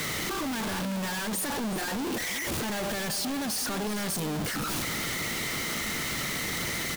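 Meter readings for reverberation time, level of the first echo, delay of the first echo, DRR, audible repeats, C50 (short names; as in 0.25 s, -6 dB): none, -12.5 dB, 0.374 s, none, 1, none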